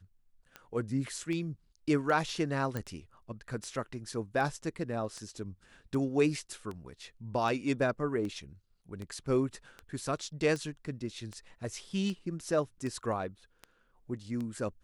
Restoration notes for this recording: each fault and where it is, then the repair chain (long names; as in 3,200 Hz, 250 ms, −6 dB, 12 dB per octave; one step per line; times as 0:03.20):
scratch tick 78 rpm −27 dBFS
0:02.77: click −21 dBFS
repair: click removal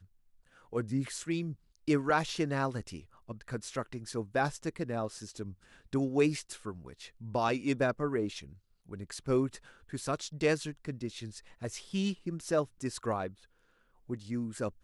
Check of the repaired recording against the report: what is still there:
none of them is left